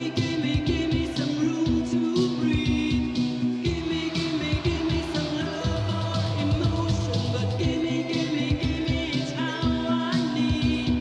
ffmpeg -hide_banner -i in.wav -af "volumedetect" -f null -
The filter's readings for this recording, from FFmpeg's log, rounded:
mean_volume: -24.9 dB
max_volume: -11.4 dB